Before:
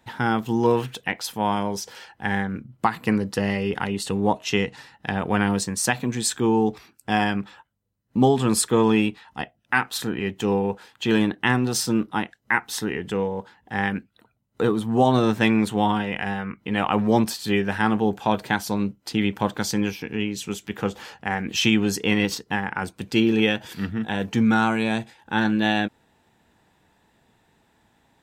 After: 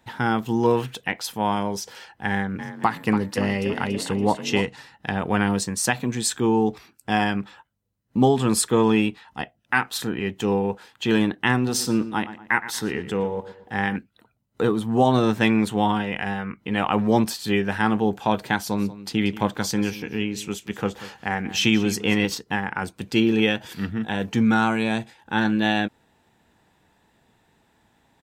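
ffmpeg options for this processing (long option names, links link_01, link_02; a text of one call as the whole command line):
ffmpeg -i in.wav -filter_complex "[0:a]asplit=3[link_01][link_02][link_03];[link_01]afade=type=out:start_time=2.58:duration=0.02[link_04];[link_02]asplit=6[link_05][link_06][link_07][link_08][link_09][link_10];[link_06]adelay=284,afreqshift=36,volume=-10.5dB[link_11];[link_07]adelay=568,afreqshift=72,volume=-17.4dB[link_12];[link_08]adelay=852,afreqshift=108,volume=-24.4dB[link_13];[link_09]adelay=1136,afreqshift=144,volume=-31.3dB[link_14];[link_10]adelay=1420,afreqshift=180,volume=-38.2dB[link_15];[link_05][link_11][link_12][link_13][link_14][link_15]amix=inputs=6:normalize=0,afade=type=in:start_time=2.58:duration=0.02,afade=type=out:start_time=4.66:duration=0.02[link_16];[link_03]afade=type=in:start_time=4.66:duration=0.02[link_17];[link_04][link_16][link_17]amix=inputs=3:normalize=0,asettb=1/sr,asplit=3[link_18][link_19][link_20];[link_18]atrim=end=11.574[link_21];[link_19]atrim=start=11.57:end=13.96,asetpts=PTS-STARTPTS,afade=type=in:duration=0.004:curve=qsin,afade=type=out:start_time=2.386:duration=0.004:curve=qsin,asplit=2[link_22][link_23];[link_23]adelay=117,lowpass=frequency=2700:poles=1,volume=-13dB,asplit=2[link_24][link_25];[link_25]adelay=117,lowpass=frequency=2700:poles=1,volume=0.42,asplit=2[link_26][link_27];[link_27]adelay=117,lowpass=frequency=2700:poles=1,volume=0.42,asplit=2[link_28][link_29];[link_29]adelay=117,lowpass=frequency=2700:poles=1,volume=0.42[link_30];[link_22][link_24][link_26][link_28][link_30]amix=inputs=5:normalize=0,atrim=end_sample=105399[link_31];[link_20]atrim=start=13.956[link_32];[link_21][link_31]acrossfade=duration=0.004:curve1=hsin:curve2=qsin[link_33];[link_33][link_32]acrossfade=duration=0.004:curve1=qsin:curve2=hsin,asettb=1/sr,asplit=3[link_34][link_35][link_36];[link_34]atrim=end=18.594[link_37];[link_35]atrim=start=18.59:end=22.28,asetpts=PTS-STARTPTS,afade=type=in:duration=0.004:curve=qsin,afade=type=out:start_time=3.686:duration=0.004:curve=qsin,aecho=1:1:185:0.158,atrim=end_sample=162729[link_38];[link_36]atrim=start=22.276[link_39];[link_37][link_38]acrossfade=duration=0.004:curve1=hsin:curve2=qsin[link_40];[link_40][link_39]acrossfade=duration=0.004:curve1=qsin:curve2=hsin" out.wav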